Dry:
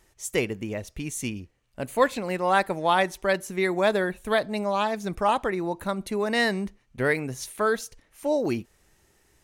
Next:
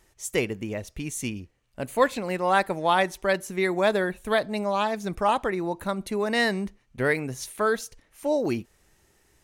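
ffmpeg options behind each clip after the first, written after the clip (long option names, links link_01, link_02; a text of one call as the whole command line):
ffmpeg -i in.wav -af anull out.wav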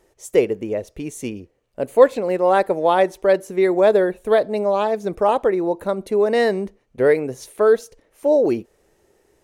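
ffmpeg -i in.wav -af "equalizer=frequency=470:width_type=o:width=1.5:gain=15,volume=-3dB" out.wav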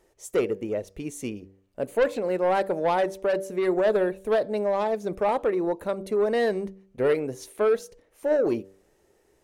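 ffmpeg -i in.wav -af "asoftclip=type=tanh:threshold=-12dB,bandreject=frequency=96.3:width_type=h:width=4,bandreject=frequency=192.6:width_type=h:width=4,bandreject=frequency=288.9:width_type=h:width=4,bandreject=frequency=385.2:width_type=h:width=4,bandreject=frequency=481.5:width_type=h:width=4,bandreject=frequency=577.8:width_type=h:width=4,volume=-4dB" out.wav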